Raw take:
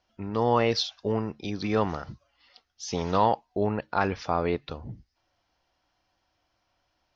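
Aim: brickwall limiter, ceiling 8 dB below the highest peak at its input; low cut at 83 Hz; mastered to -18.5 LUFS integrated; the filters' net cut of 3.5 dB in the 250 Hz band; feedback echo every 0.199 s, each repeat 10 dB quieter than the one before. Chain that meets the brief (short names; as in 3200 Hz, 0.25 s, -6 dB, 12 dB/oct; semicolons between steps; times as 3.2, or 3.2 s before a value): HPF 83 Hz; bell 250 Hz -4.5 dB; limiter -18 dBFS; feedback echo 0.199 s, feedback 32%, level -10 dB; gain +13.5 dB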